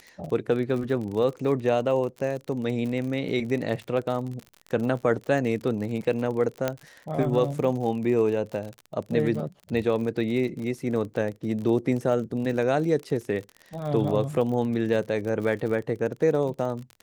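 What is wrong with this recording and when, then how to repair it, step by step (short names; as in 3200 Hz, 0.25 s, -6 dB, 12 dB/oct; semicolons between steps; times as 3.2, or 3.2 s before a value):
crackle 47/s -32 dBFS
6.68 pop -11 dBFS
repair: de-click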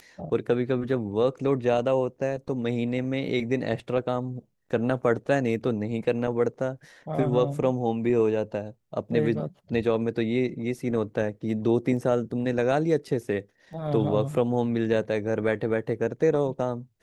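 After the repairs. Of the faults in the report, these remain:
none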